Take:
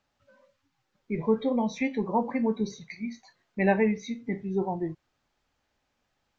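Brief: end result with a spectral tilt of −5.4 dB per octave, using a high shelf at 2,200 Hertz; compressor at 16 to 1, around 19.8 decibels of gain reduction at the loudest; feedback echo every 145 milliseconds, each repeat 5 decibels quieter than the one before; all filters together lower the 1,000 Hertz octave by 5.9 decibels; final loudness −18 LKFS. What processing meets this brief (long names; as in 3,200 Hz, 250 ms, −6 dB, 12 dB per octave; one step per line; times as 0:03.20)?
parametric band 1,000 Hz −8.5 dB
high-shelf EQ 2,200 Hz +5 dB
downward compressor 16 to 1, threshold −39 dBFS
repeating echo 145 ms, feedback 56%, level −5 dB
level +25 dB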